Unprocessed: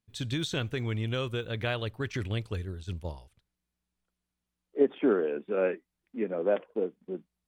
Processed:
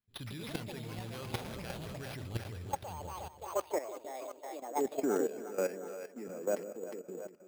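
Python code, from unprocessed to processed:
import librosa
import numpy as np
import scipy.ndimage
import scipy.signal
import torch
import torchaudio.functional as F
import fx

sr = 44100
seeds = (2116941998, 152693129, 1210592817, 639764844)

y = fx.cycle_switch(x, sr, every=3, mode='inverted', at=(1.38, 1.86))
y = fx.echo_pitch(y, sr, ms=163, semitones=6, count=2, db_per_echo=-3.0)
y = fx.echo_split(y, sr, split_hz=480.0, low_ms=161, high_ms=359, feedback_pct=52, wet_db=-8)
y = np.repeat(y[::6], 6)[:len(y)]
y = fx.level_steps(y, sr, step_db=13)
y = y * librosa.db_to_amplitude(-3.5)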